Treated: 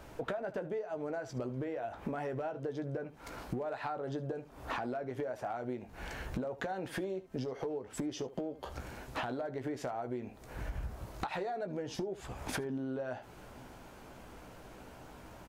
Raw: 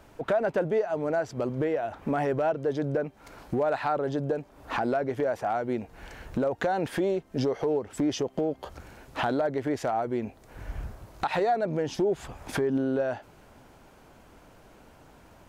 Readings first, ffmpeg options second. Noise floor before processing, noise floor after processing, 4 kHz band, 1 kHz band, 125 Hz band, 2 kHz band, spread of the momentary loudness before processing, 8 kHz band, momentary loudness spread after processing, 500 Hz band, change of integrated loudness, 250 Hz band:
-55 dBFS, -53 dBFS, -7.0 dB, -10.5 dB, -7.0 dB, -8.0 dB, 13 LU, -5.0 dB, 14 LU, -11.0 dB, -10.5 dB, -9.5 dB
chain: -af "aecho=1:1:16|74:0.376|0.133,acompressor=threshold=-36dB:ratio=12,volume=1.5dB"

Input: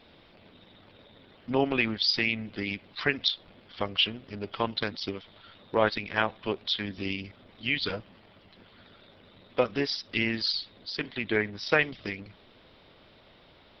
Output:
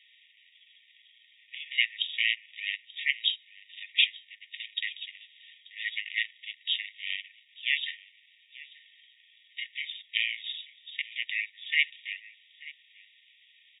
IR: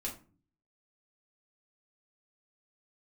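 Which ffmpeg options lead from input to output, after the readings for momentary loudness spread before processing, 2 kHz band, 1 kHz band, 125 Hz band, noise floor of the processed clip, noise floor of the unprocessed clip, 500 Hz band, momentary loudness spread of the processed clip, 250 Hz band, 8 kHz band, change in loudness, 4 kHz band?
12 LU, +0.5 dB, under -40 dB, under -40 dB, -62 dBFS, -57 dBFS, under -40 dB, 20 LU, under -40 dB, n/a, -1.0 dB, +0.5 dB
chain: -af "aecho=1:1:884:0.0944,aeval=exprs='val(0)*sin(2*PI*370*n/s)':c=same,afftfilt=real='re*between(b*sr/4096,1800,3800)':imag='im*between(b*sr/4096,1800,3800)':win_size=4096:overlap=0.75,volume=5.5dB"

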